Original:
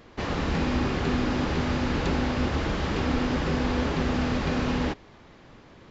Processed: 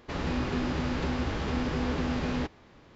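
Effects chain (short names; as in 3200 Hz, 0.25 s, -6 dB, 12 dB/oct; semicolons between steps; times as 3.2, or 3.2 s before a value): time stretch by phase-locked vocoder 0.5×; gain -2.5 dB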